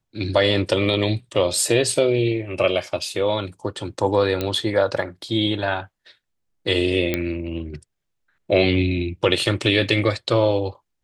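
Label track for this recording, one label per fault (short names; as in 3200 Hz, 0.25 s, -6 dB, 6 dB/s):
4.410000	4.410000	pop -10 dBFS
7.140000	7.140000	pop -8 dBFS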